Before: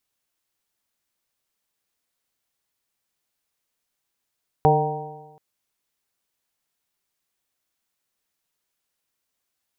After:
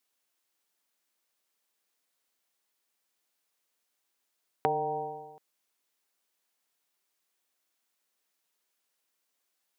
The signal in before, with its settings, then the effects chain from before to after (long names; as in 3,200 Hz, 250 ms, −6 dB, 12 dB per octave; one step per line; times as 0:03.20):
stiff-string partials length 0.73 s, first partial 149 Hz, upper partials −10/1/−6/3/−5 dB, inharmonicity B 0.0028, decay 1.13 s, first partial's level −17.5 dB
downward compressor 6 to 1, threshold −25 dBFS
high-pass filter 250 Hz 12 dB per octave